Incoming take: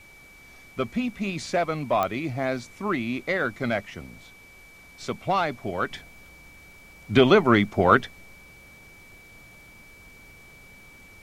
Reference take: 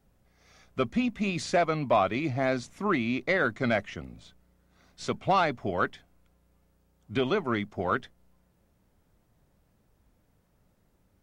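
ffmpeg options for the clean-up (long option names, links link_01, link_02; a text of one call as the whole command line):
ffmpeg -i in.wav -af "adeclick=threshold=4,bandreject=frequency=2300:width=30,agate=range=-21dB:threshold=-42dB,asetnsamples=nb_out_samples=441:pad=0,asendcmd='5.91 volume volume -10.5dB',volume=0dB" out.wav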